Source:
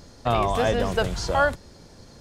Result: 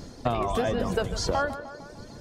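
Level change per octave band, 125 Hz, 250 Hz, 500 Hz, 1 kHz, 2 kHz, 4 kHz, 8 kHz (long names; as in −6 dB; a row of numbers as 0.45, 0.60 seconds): −4.0, −1.0, −4.0, −5.0, −7.0, −3.0, −0.5 decibels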